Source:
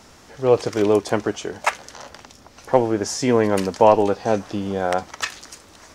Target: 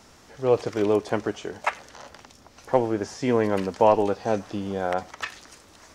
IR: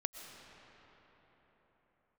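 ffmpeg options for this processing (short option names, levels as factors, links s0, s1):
-filter_complex "[0:a]acrossover=split=3700[s0][s1];[s1]acompressor=threshold=0.0112:ratio=4:attack=1:release=60[s2];[s0][s2]amix=inputs=2:normalize=0[s3];[1:a]atrim=start_sample=2205,atrim=end_sample=4410[s4];[s3][s4]afir=irnorm=-1:irlink=0,volume=0.708"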